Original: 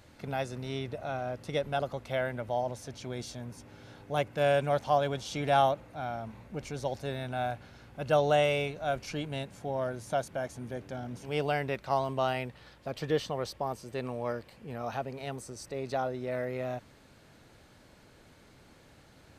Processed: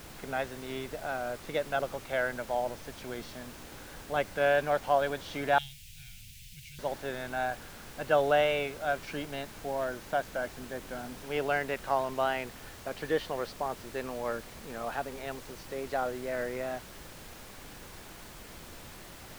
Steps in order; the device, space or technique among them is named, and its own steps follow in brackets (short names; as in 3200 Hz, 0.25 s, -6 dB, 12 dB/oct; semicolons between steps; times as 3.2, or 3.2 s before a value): horn gramophone (BPF 230–3600 Hz; bell 1600 Hz +6.5 dB 0.46 oct; wow and flutter; pink noise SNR 14 dB); 5.58–6.79 elliptic band-stop 140–2500 Hz, stop band 40 dB